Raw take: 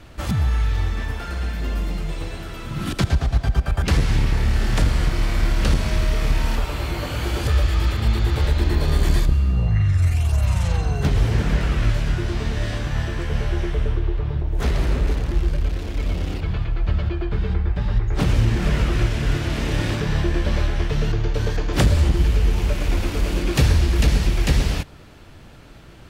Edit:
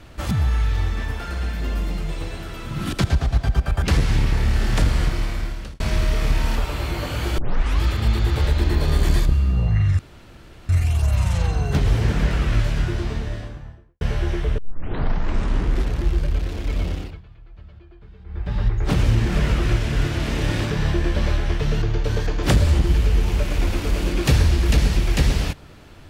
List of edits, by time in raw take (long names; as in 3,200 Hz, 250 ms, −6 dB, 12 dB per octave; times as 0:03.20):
0:05.02–0:05.80: fade out
0:07.38: tape start 0.43 s
0:09.99: splice in room tone 0.70 s
0:12.11–0:13.31: fade out and dull
0:13.88: tape start 1.40 s
0:16.18–0:17.88: duck −22 dB, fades 0.33 s